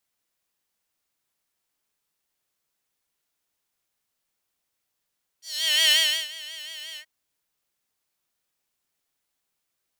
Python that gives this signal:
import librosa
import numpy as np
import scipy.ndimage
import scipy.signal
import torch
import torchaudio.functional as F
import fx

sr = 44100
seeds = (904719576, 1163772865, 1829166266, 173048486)

y = fx.sub_patch_vibrato(sr, seeds[0], note=75, wave='square', wave2='saw', interval_st=0, detune_cents=16, level2_db=-9.0, sub_db=-3.5, noise_db=-30.0, kind='highpass', cutoff_hz=1900.0, q=2.9, env_oct=1.5, env_decay_s=0.27, env_sustain_pct=40, attack_ms=484.0, decay_s=0.37, sustain_db=-20.0, release_s=0.08, note_s=1.55, lfo_hz=5.6, vibrato_cents=76)